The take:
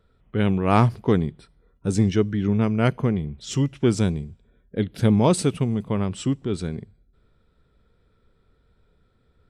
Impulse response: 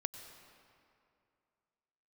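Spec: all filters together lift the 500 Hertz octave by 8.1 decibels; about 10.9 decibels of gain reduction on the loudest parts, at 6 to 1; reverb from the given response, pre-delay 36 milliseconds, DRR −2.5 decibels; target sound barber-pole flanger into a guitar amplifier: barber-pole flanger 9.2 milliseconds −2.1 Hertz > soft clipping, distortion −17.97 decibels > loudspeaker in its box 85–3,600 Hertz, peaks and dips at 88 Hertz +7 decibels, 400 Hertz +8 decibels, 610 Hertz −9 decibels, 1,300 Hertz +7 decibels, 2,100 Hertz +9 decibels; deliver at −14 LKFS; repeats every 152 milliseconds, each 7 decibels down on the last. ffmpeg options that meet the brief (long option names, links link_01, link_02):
-filter_complex "[0:a]equalizer=frequency=500:width_type=o:gain=5.5,acompressor=threshold=-23dB:ratio=6,aecho=1:1:152|304|456|608|760:0.447|0.201|0.0905|0.0407|0.0183,asplit=2[link_01][link_02];[1:a]atrim=start_sample=2205,adelay=36[link_03];[link_02][link_03]afir=irnorm=-1:irlink=0,volume=3dB[link_04];[link_01][link_04]amix=inputs=2:normalize=0,asplit=2[link_05][link_06];[link_06]adelay=9.2,afreqshift=-2.1[link_07];[link_05][link_07]amix=inputs=2:normalize=1,asoftclip=threshold=-17.5dB,highpass=85,equalizer=frequency=88:width_type=q:width=4:gain=7,equalizer=frequency=400:width_type=q:width=4:gain=8,equalizer=frequency=610:width_type=q:width=4:gain=-9,equalizer=frequency=1300:width_type=q:width=4:gain=7,equalizer=frequency=2100:width_type=q:width=4:gain=9,lowpass=frequency=3600:width=0.5412,lowpass=frequency=3600:width=1.3066,volume=12.5dB"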